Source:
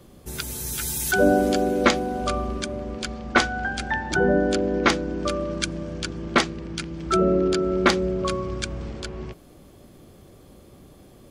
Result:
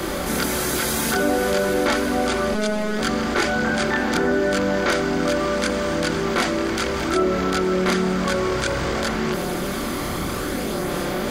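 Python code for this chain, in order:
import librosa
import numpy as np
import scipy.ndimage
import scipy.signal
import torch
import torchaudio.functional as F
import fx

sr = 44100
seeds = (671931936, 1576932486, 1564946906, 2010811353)

y = fx.bin_compress(x, sr, power=0.4)
y = fx.robotise(y, sr, hz=212.0, at=(2.52, 2.99))
y = fx.chorus_voices(y, sr, voices=4, hz=0.33, base_ms=25, depth_ms=2.9, mix_pct=55)
y = fx.env_flatten(y, sr, amount_pct=50)
y = F.gain(torch.from_numpy(y), -4.0).numpy()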